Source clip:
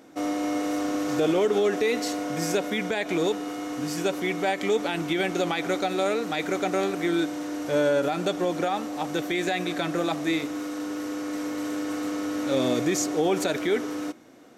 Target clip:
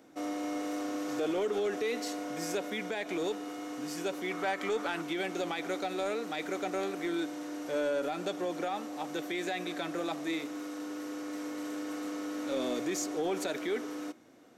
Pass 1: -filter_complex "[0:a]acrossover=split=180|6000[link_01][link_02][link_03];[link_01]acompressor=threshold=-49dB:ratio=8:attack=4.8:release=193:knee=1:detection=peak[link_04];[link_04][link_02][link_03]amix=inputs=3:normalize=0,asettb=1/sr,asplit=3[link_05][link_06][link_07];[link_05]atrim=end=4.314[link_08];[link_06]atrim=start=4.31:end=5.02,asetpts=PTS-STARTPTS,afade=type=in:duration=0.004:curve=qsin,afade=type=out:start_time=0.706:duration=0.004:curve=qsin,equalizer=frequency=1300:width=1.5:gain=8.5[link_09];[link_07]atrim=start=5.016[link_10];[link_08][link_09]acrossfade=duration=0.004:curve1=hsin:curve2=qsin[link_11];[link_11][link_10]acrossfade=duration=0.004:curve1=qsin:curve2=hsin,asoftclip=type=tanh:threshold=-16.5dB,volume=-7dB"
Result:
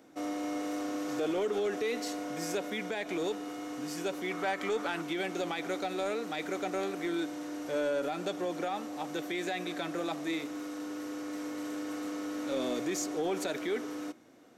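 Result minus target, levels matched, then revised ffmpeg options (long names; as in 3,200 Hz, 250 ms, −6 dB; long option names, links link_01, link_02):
downward compressor: peak gain reduction −6.5 dB
-filter_complex "[0:a]acrossover=split=180|6000[link_01][link_02][link_03];[link_01]acompressor=threshold=-56.5dB:ratio=8:attack=4.8:release=193:knee=1:detection=peak[link_04];[link_04][link_02][link_03]amix=inputs=3:normalize=0,asettb=1/sr,asplit=3[link_05][link_06][link_07];[link_05]atrim=end=4.314[link_08];[link_06]atrim=start=4.31:end=5.02,asetpts=PTS-STARTPTS,afade=type=in:duration=0.004:curve=qsin,afade=type=out:start_time=0.706:duration=0.004:curve=qsin,equalizer=frequency=1300:width=1.5:gain=8.5[link_09];[link_07]atrim=start=5.016[link_10];[link_08][link_09]acrossfade=duration=0.004:curve1=hsin:curve2=qsin[link_11];[link_11][link_10]acrossfade=duration=0.004:curve1=qsin:curve2=hsin,asoftclip=type=tanh:threshold=-16.5dB,volume=-7dB"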